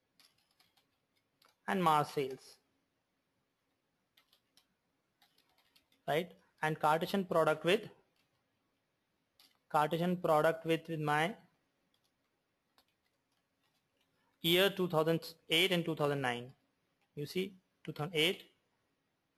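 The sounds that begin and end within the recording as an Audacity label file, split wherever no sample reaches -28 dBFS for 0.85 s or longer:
1.680000	2.230000	sound
6.090000	7.750000	sound
9.750000	11.270000	sound
14.450000	16.360000	sound
17.360000	18.310000	sound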